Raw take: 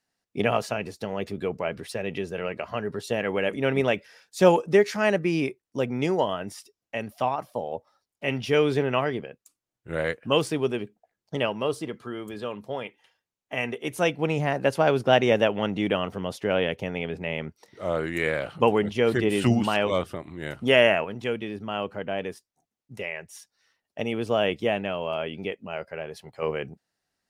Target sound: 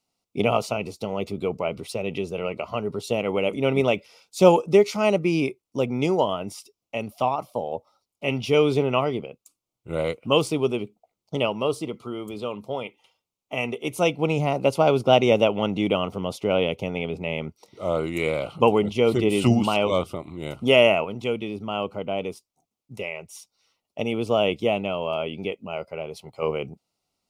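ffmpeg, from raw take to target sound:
ffmpeg -i in.wav -af "asuperstop=centerf=1700:order=4:qfactor=2.2,volume=2.5dB" out.wav

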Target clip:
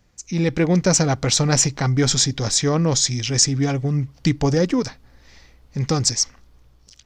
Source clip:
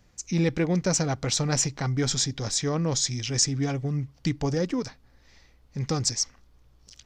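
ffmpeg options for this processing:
ffmpeg -i in.wav -af "dynaudnorm=framelen=110:gausssize=9:maxgain=8dB" out.wav

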